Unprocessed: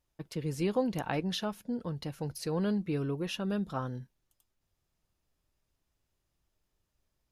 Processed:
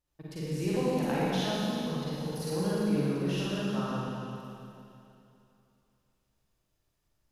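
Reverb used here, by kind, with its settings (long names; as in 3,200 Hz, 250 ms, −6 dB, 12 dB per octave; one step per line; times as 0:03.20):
four-comb reverb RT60 2.8 s, DRR −9 dB
level −6.5 dB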